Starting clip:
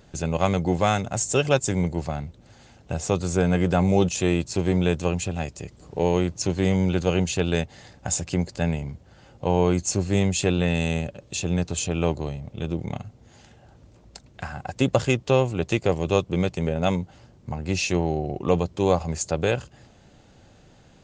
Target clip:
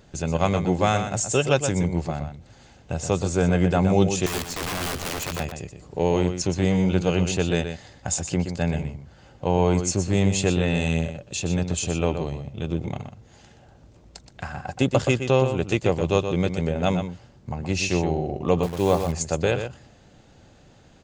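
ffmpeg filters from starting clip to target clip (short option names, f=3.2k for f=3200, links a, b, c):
-filter_complex "[0:a]asettb=1/sr,asplit=3[a][b][c];[a]atrim=end=4.264[d];[b]atrim=start=4.26:end=5.4,asetpts=PTS-STARTPTS,afade=t=in:d=0.004:c=qsin,afade=t=out:st=1.136:d=0.004:c=qsin,aeval=exprs='(mod(14.1*val(0)+1,2)-1)/14.1':c=same[e];[c]atrim=start=5.396[f];[d][e]acrossfade=d=0.004:c1=hsin:c2=qsin[g];[g][f]acrossfade=d=0.004:c1=qsin:c2=hsin,asplit=2[h][i];[i]adelay=122.4,volume=-8dB,highshelf=f=4k:g=-2.76[j];[h][j]amix=inputs=2:normalize=0,asettb=1/sr,asplit=3[k][l][m];[k]atrim=end=18.634[n];[l]atrim=start=18.63:end=19.12,asetpts=PTS-STARTPTS,afade=t=in:d=0.004:c=qsin,afade=t=out:st=0.486:d=0.004:c=qsin,acrusher=bits=7:dc=4:mix=0:aa=0.000001[o];[m]atrim=start=19.116[p];[n][o]acrossfade=d=0.004:c1=hsin:c2=qsin[q];[q][p]acrossfade=d=0.004:c1=qsin:c2=hsin"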